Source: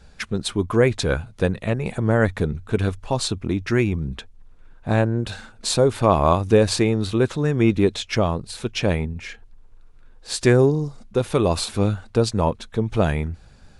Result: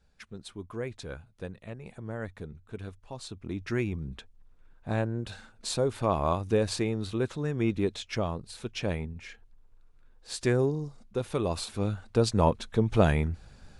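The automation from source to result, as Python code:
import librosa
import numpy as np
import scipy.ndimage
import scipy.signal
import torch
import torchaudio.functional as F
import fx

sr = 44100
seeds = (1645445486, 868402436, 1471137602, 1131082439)

y = fx.gain(x, sr, db=fx.line((3.22, -18.5), (3.62, -10.0), (11.79, -10.0), (12.44, -2.5)))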